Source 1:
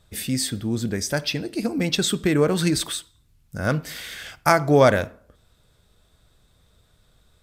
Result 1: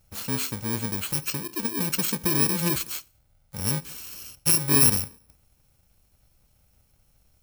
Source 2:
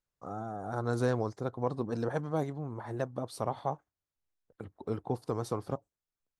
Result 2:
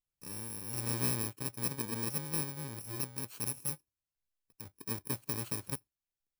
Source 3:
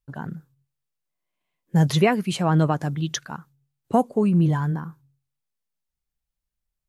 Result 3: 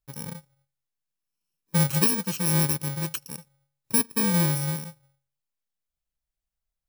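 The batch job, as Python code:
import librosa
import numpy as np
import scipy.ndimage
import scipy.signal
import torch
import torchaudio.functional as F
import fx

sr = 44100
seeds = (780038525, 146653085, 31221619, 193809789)

y = fx.bit_reversed(x, sr, seeds[0], block=64)
y = fx.dynamic_eq(y, sr, hz=680.0, q=1.5, threshold_db=-39.0, ratio=4.0, max_db=-4)
y = F.gain(torch.from_numpy(y), -3.5).numpy()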